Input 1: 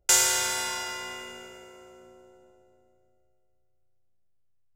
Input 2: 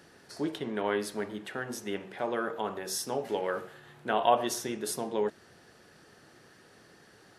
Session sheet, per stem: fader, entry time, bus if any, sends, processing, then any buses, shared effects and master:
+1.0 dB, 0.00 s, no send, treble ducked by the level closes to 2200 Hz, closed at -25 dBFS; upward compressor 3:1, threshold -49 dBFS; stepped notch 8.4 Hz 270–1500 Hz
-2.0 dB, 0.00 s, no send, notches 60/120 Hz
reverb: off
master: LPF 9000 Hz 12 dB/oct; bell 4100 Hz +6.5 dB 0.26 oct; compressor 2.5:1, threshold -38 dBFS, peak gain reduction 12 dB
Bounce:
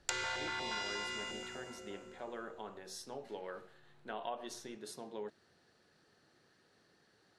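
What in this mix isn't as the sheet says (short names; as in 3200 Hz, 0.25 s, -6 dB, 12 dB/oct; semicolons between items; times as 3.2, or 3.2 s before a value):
stem 1: missing upward compressor 3:1, threshold -49 dBFS; stem 2 -2.0 dB -> -13.0 dB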